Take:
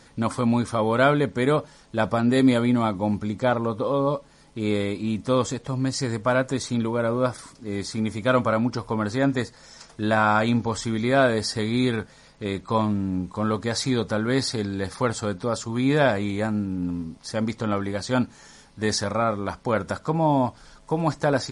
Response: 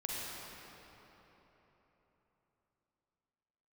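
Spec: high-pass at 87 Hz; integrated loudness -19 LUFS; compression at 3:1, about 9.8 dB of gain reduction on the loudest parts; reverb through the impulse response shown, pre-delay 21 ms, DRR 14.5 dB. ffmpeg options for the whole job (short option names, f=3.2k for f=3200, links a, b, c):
-filter_complex "[0:a]highpass=87,acompressor=threshold=-27dB:ratio=3,asplit=2[a][b];[1:a]atrim=start_sample=2205,adelay=21[c];[b][c]afir=irnorm=-1:irlink=0,volume=-17.5dB[d];[a][d]amix=inputs=2:normalize=0,volume=11.5dB"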